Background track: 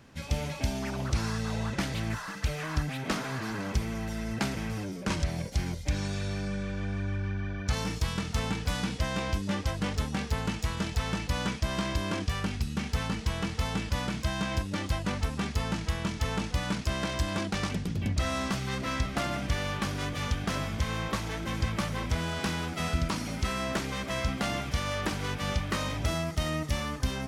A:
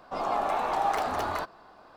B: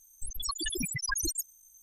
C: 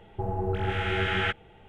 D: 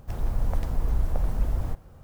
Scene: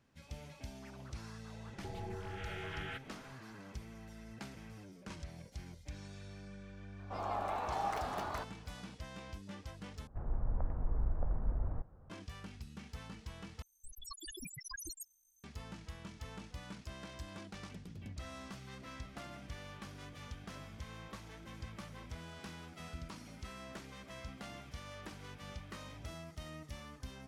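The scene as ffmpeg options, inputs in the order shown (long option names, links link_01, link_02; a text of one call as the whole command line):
ffmpeg -i bed.wav -i cue0.wav -i cue1.wav -i cue2.wav -i cue3.wav -filter_complex "[0:a]volume=-17.5dB[link_01];[3:a]acompressor=threshold=-34dB:ratio=6:attack=3.2:release=140:knee=1:detection=peak[link_02];[4:a]lowpass=frequency=1600:width=0.5412,lowpass=frequency=1600:width=1.3066[link_03];[link_01]asplit=3[link_04][link_05][link_06];[link_04]atrim=end=10.074[link_07];[link_03]atrim=end=2.03,asetpts=PTS-STARTPTS,volume=-9.5dB[link_08];[link_05]atrim=start=12.096:end=13.624[link_09];[2:a]atrim=end=1.82,asetpts=PTS-STARTPTS,volume=-14.5dB[link_10];[link_06]atrim=start=15.436[link_11];[link_02]atrim=end=1.68,asetpts=PTS-STARTPTS,volume=-6.5dB,afade=type=in:duration=0.004:curve=hsin,afade=type=out:start_time=1.676:duration=0.004:curve=hsin,adelay=1660[link_12];[1:a]atrim=end=1.96,asetpts=PTS-STARTPTS,volume=-10dB,afade=type=in:duration=0.004:curve=hsin,afade=type=out:start_time=1.956:duration=0.004:curve=hsin,adelay=6990[link_13];[link_07][link_08]acrossfade=duration=0.004:curve1=hsin:curve2=hsin[link_14];[link_14][link_09]acrossfade=duration=0.004:curve1=hsin:curve2=hsin[link_15];[link_15][link_10]acrossfade=duration=0.004:curve1=hsin:curve2=hsin[link_16];[link_16][link_11]acrossfade=duration=0.004:curve1=hsin:curve2=hsin[link_17];[link_17][link_12][link_13]amix=inputs=3:normalize=0" out.wav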